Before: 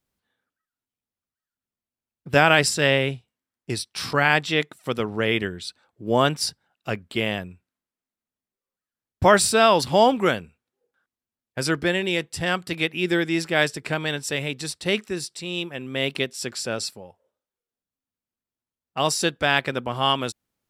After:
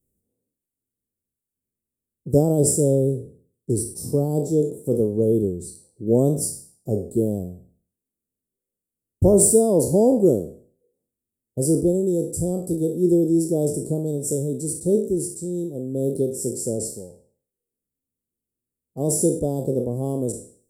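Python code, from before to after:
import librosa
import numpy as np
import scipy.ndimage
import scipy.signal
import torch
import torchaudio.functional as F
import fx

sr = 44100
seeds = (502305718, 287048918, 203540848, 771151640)

y = fx.spec_trails(x, sr, decay_s=0.48)
y = scipy.signal.sosfilt(scipy.signal.ellip(3, 1.0, 80, [460.0, 8300.0], 'bandstop', fs=sr, output='sos'), y)
y = y * librosa.db_to_amplitude(6.0)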